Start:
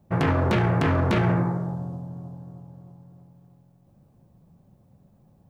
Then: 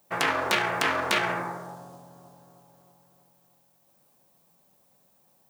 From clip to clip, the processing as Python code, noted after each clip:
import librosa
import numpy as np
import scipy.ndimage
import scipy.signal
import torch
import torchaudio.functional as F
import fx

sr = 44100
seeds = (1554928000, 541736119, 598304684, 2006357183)

y = fx.highpass(x, sr, hz=570.0, slope=6)
y = fx.tilt_eq(y, sr, slope=3.5)
y = F.gain(torch.from_numpy(y), 2.5).numpy()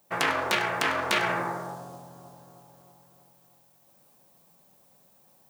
y = fx.rider(x, sr, range_db=10, speed_s=0.5)
y = y + 10.0 ** (-16.0 / 20.0) * np.pad(y, (int(100 * sr / 1000.0), 0))[:len(y)]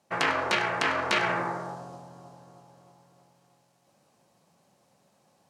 y = scipy.signal.sosfilt(scipy.signal.butter(2, 6800.0, 'lowpass', fs=sr, output='sos'), x)
y = fx.notch(y, sr, hz=3500.0, q=19.0)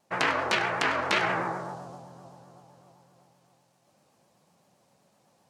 y = fx.vibrato(x, sr, rate_hz=7.8, depth_cents=94.0)